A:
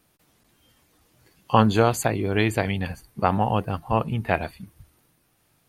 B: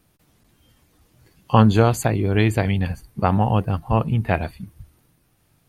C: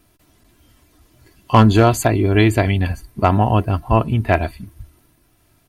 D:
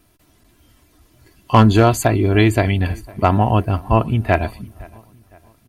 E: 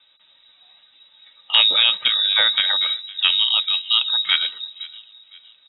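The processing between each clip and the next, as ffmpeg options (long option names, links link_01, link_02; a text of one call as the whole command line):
ffmpeg -i in.wav -af "lowshelf=frequency=210:gain=9" out.wav
ffmpeg -i in.wav -af "aecho=1:1:3:0.5,volume=7dB,asoftclip=hard,volume=-7dB,volume=4dB" out.wav
ffmpeg -i in.wav -filter_complex "[0:a]asplit=2[link_01][link_02];[link_02]adelay=511,lowpass=frequency=3200:poles=1,volume=-24dB,asplit=2[link_03][link_04];[link_04]adelay=511,lowpass=frequency=3200:poles=1,volume=0.45,asplit=2[link_05][link_06];[link_06]adelay=511,lowpass=frequency=3200:poles=1,volume=0.45[link_07];[link_01][link_03][link_05][link_07]amix=inputs=4:normalize=0" out.wav
ffmpeg -i in.wav -filter_complex "[0:a]lowpass=frequency=3300:width_type=q:width=0.5098,lowpass=frequency=3300:width_type=q:width=0.6013,lowpass=frequency=3300:width_type=q:width=0.9,lowpass=frequency=3300:width_type=q:width=2.563,afreqshift=-3900,acrossover=split=3000[link_01][link_02];[link_02]acompressor=threshold=-23dB:ratio=4:attack=1:release=60[link_03];[link_01][link_03]amix=inputs=2:normalize=0,volume=1dB" out.wav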